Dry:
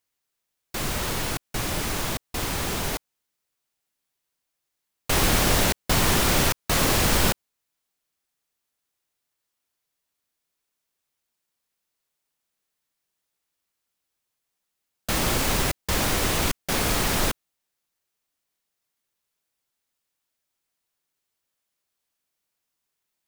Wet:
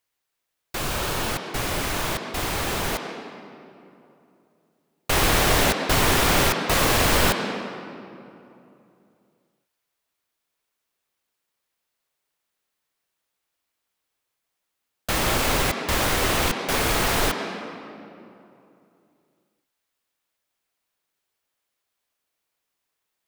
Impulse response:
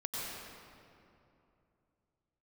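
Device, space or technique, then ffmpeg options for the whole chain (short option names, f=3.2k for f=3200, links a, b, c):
filtered reverb send: -filter_complex "[0:a]asettb=1/sr,asplit=3[a][b][c];[a]atrim=end=0.784[d];[b]atrim=start=0.78:end=1.29,asetpts=PTS-STARTPTS,afade=t=in:d=0.004:c=qsin,afade=t=out:st=0.506:d=0.004:c=qsin,bandreject=f=2k:w=10[e];[c]atrim=start=1.286[f];[d][e]acrossfade=d=0.004:c1=hsin:c2=qsin[g];[g][f]acrossfade=d=0.004:c1=qsin:c2=hsin,asplit=2[h][i];[i]highpass=f=200:w=0.5412,highpass=f=200:w=1.3066,lowpass=4.3k[j];[1:a]atrim=start_sample=2205[k];[j][k]afir=irnorm=-1:irlink=0,volume=-5dB[l];[h][l]amix=inputs=2:normalize=0"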